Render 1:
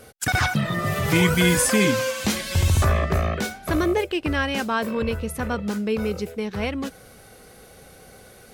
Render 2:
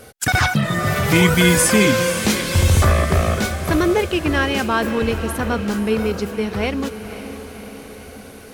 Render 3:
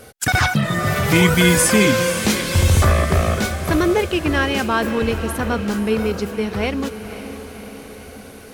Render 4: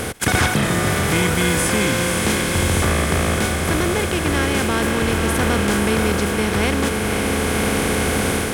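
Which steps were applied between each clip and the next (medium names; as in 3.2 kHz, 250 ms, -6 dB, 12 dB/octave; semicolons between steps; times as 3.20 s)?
echo that smears into a reverb 541 ms, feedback 61%, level -11.5 dB; trim +4.5 dB
no audible change
spectral levelling over time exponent 0.4; level rider; trim -5 dB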